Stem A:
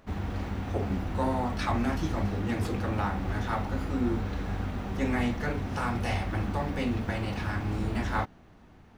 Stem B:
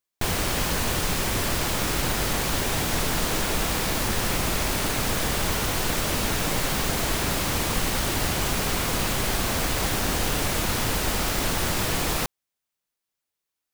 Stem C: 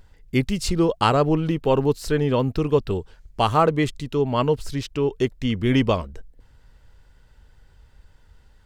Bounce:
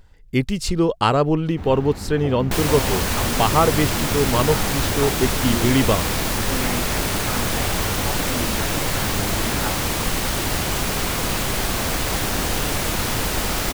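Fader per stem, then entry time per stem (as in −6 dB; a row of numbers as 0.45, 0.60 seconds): +0.5, +2.5, +1.0 decibels; 1.50, 2.30, 0.00 seconds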